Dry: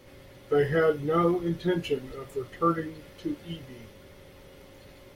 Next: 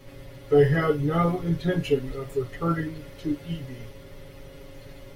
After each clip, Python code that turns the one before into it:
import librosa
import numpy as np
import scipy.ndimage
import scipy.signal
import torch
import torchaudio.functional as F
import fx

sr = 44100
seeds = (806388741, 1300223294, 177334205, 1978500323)

y = fx.low_shelf(x, sr, hz=100.0, db=11.0)
y = y + 0.97 * np.pad(y, (int(7.2 * sr / 1000.0), 0))[:len(y)]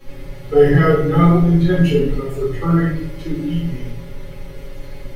y = fx.room_shoebox(x, sr, seeds[0], volume_m3=97.0, walls='mixed', distance_m=2.2)
y = F.gain(torch.from_numpy(y), -2.0).numpy()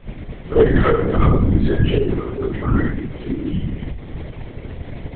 y = fx.tracing_dist(x, sr, depth_ms=0.058)
y = fx.lpc_vocoder(y, sr, seeds[1], excitation='whisper', order=10)
y = F.gain(torch.from_numpy(y), -2.0).numpy()